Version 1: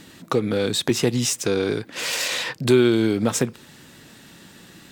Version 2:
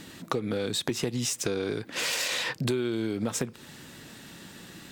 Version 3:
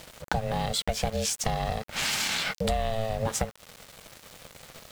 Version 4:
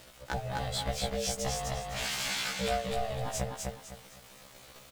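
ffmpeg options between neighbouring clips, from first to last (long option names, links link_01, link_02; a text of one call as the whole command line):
ffmpeg -i in.wav -af "acompressor=threshold=-26dB:ratio=6" out.wav
ffmpeg -i in.wav -af "aeval=exprs='val(0)*sin(2*PI*330*n/s)':channel_layout=same,aeval=exprs='val(0)*gte(abs(val(0)),0.00631)':channel_layout=same,volume=4dB" out.wav
ffmpeg -i in.wav -af "aecho=1:1:253|506|759|1012:0.708|0.219|0.068|0.0211,afftfilt=real='re*1.73*eq(mod(b,3),0)':imag='im*1.73*eq(mod(b,3),0)':win_size=2048:overlap=0.75,volume=-4dB" out.wav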